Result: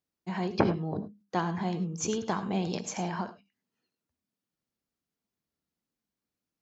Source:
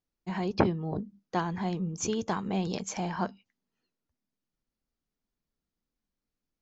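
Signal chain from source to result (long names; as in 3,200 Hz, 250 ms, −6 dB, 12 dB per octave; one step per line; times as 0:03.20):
high-pass filter 90 Hz 12 dB per octave
reverb whose tail is shaped and stops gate 120 ms rising, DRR 10 dB
every ending faded ahead of time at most 170 dB per second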